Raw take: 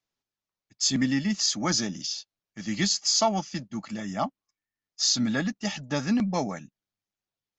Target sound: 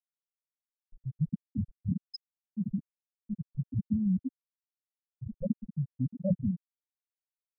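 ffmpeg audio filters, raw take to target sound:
-af "aeval=exprs='(mod(23.7*val(0)+1,2)-1)/23.7':c=same,bass=f=250:g=8,treble=f=4k:g=8,afftfilt=real='re*gte(hypot(re,im),0.2)':imag='im*gte(hypot(re,im),0.2)':win_size=1024:overlap=0.75,lowshelf=f=61:g=-10,volume=6dB"

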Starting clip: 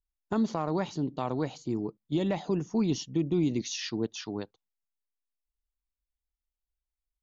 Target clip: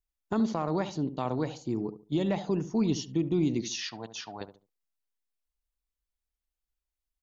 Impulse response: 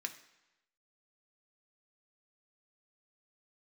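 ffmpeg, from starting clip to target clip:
-filter_complex "[0:a]asettb=1/sr,asplit=3[a][b][c];[a]atrim=end=3.714[d];[b]atrim=start=3.71:end=4.41,asetpts=PTS-STARTPTS,afade=t=in:d=0.004:c=qsin,afade=t=out:st=0.696:d=0.004:c=qsin,lowshelf=f=510:t=q:w=3:g=-9[e];[c]atrim=start=4.406[f];[d][e]acrossfade=d=0.004:c1=hsin:c2=qsin[g];[g][f]acrossfade=d=0.004:c1=qsin:c2=hsin,asplit=2[h][i];[i]adelay=71,lowpass=f=1k:p=1,volume=-11dB,asplit=2[j][k];[k]adelay=71,lowpass=f=1k:p=1,volume=0.29,asplit=2[l][m];[m]adelay=71,lowpass=f=1k:p=1,volume=0.29[n];[h][j][l][n]amix=inputs=4:normalize=0"

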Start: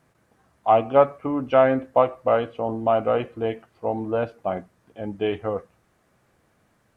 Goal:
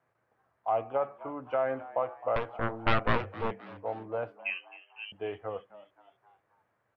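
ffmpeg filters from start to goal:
-filter_complex "[0:a]acrossover=split=400 2400:gain=0.126 1 0.158[a][b][c];[a][b][c]amix=inputs=3:normalize=0,alimiter=limit=-11dB:level=0:latency=1:release=84,equalizer=f=110:w=1.6:g=13,asettb=1/sr,asplit=3[d][e][f];[d]atrim=end=2.364[g];[e]atrim=start=2.36:end=3.51,asetpts=PTS-STARTPTS,afade=t=in:d=0.004:c=qsin,afade=t=out:st=1.146:d=0.004:c=qsin,aeval=exprs='0.531*(cos(1*acos(clip(val(0)/0.531,-1,1)))-cos(1*PI/2))+0.188*(cos(7*acos(clip(val(0)/0.531,-1,1)))-cos(7*PI/2))+0.15*(cos(8*acos(clip(val(0)/0.531,-1,1)))-cos(8*PI/2))':c=same[h];[f]atrim=start=3.506[i];[g][h]acrossfade=d=0.004:c1=hsin:c2=qsin[j];[j][i]acrossfade=d=0.004:c1=qsin:c2=hsin,asettb=1/sr,asplit=3[k][l][m];[k]atrim=end=4.394[n];[l]atrim=start=4.39:end=5.12,asetpts=PTS-STARTPTS,afade=t=in:d=0.004:c=qsin,afade=t=out:st=0.726:d=0.004:c=qsin,lowpass=f=2.7k:t=q:w=0.5098,lowpass=f=2.7k:t=q:w=0.6013,lowpass=f=2.7k:t=q:w=0.9,lowpass=f=2.7k:t=q:w=2.563,afreqshift=-3200[o];[m]atrim=start=5.116[p];[n][o]acrossfade=d=0.004:c1=hsin:c2=qsin[q];[q][p]acrossfade=d=0.004:c1=qsin:c2=hsin,asplit=2[r][s];[s]asplit=4[t][u][v][w];[t]adelay=262,afreqshift=97,volume=-17.5dB[x];[u]adelay=524,afreqshift=194,volume=-23.5dB[y];[v]adelay=786,afreqshift=291,volume=-29.5dB[z];[w]adelay=1048,afreqshift=388,volume=-35.6dB[aa];[x][y][z][aa]amix=inputs=4:normalize=0[ab];[r][ab]amix=inputs=2:normalize=0,volume=-7.5dB"

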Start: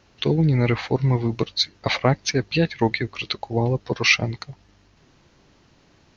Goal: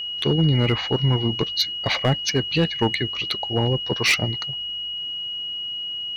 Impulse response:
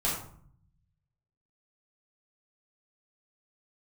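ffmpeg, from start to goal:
-af "asoftclip=type=hard:threshold=-13dB,aeval=exprs='val(0)+0.0447*sin(2*PI*2900*n/s)':c=same"

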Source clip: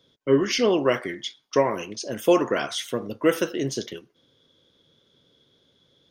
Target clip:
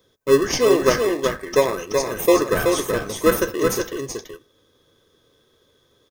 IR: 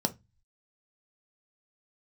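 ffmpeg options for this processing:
-filter_complex "[0:a]firequalizer=gain_entry='entry(100,0);entry(170,-11);entry(420,3);entry(890,-6);entry(1300,12);entry(2100,-4);entry(3400,-4);entry(6300,6);entry(14000,14)':delay=0.05:min_phase=1,asplit=2[a][b];[b]acrusher=samples=29:mix=1:aa=0.000001,volume=-5dB[c];[a][c]amix=inputs=2:normalize=0,asuperstop=centerf=1400:order=8:qfactor=7.9,aecho=1:1:377:0.596"

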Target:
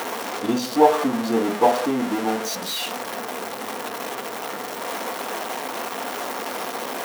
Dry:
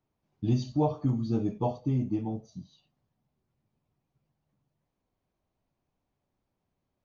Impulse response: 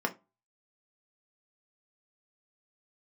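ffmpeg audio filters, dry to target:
-filter_complex "[0:a]aeval=exprs='val(0)+0.5*0.0266*sgn(val(0))':c=same,highpass=420,asplit=2[a][b];[1:a]atrim=start_sample=2205[c];[b][c]afir=irnorm=-1:irlink=0,volume=-8.5dB[d];[a][d]amix=inputs=2:normalize=0,volume=8.5dB"

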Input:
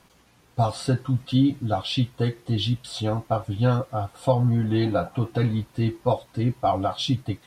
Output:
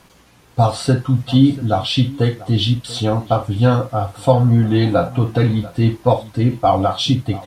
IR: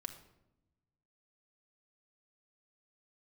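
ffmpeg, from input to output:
-af "aecho=1:1:52|689:0.266|0.106,volume=7.5dB"

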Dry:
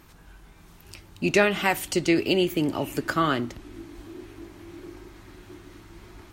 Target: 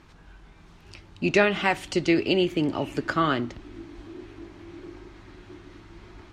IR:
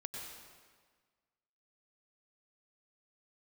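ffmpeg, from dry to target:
-af "lowpass=5.1k"

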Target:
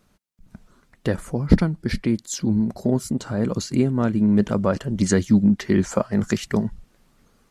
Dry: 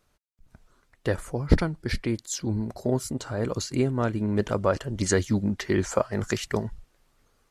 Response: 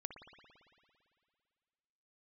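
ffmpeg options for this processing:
-filter_complex "[0:a]equalizer=f=200:t=o:w=0.85:g=11,asplit=2[a][b];[b]acompressor=threshold=-34dB:ratio=6,volume=0dB[c];[a][c]amix=inputs=2:normalize=0,volume=-1dB"

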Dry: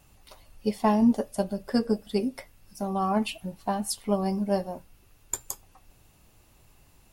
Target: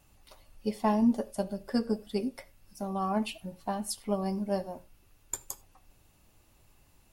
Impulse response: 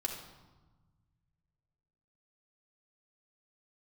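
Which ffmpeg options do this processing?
-filter_complex "[0:a]asplit=2[a][b];[1:a]atrim=start_sample=2205,atrim=end_sample=4410,asetrate=41013,aresample=44100[c];[b][c]afir=irnorm=-1:irlink=0,volume=-13.5dB[d];[a][d]amix=inputs=2:normalize=0,volume=-6dB"

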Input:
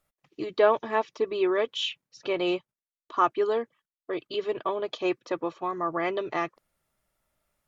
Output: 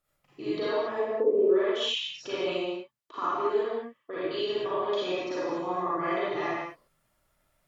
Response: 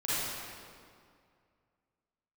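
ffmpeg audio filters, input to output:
-filter_complex "[0:a]acompressor=threshold=-30dB:ratio=6,asplit=3[a][b][c];[a]afade=t=out:st=0.93:d=0.02[d];[b]lowpass=f=530:t=q:w=4.9,afade=t=in:st=0.93:d=0.02,afade=t=out:st=1.48:d=0.02[e];[c]afade=t=in:st=1.48:d=0.02[f];[d][e][f]amix=inputs=3:normalize=0[g];[1:a]atrim=start_sample=2205,afade=t=out:st=0.34:d=0.01,atrim=end_sample=15435[h];[g][h]afir=irnorm=-1:irlink=0,volume=-2.5dB"

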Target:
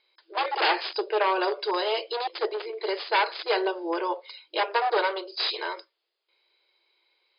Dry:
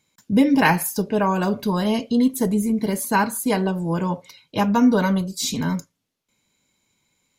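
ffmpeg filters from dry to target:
-af "aemphasis=mode=production:type=50fm,aeval=exprs='0.178*(abs(mod(val(0)/0.178+3,4)-2)-1)':c=same,afftfilt=real='re*between(b*sr/4096,330,5100)':imag='im*between(b*sr/4096,330,5100)':win_size=4096:overlap=0.75"

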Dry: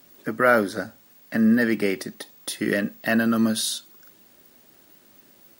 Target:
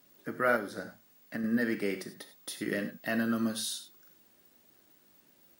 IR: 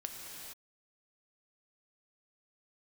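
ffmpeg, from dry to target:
-filter_complex "[1:a]atrim=start_sample=2205,atrim=end_sample=3528,asetrate=33075,aresample=44100[a];[0:a][a]afir=irnorm=-1:irlink=0,asettb=1/sr,asplit=3[b][c][d];[b]atrim=end=0.564[e];[c]atrim=start=0.56:end=1.44,asetpts=PTS-STARTPTS,afade=t=in:d=0.004:c=qsin,afade=t=out:st=0.876:d=0.004:c=qsin,acompressor=threshold=-24dB:ratio=6[f];[d]atrim=start=1.436[g];[e][f]acrossfade=d=0.004:c1=hsin:c2=qsin[h];[h][g]acrossfade=d=0.004:c1=qsin:c2=hsin,volume=-8dB"

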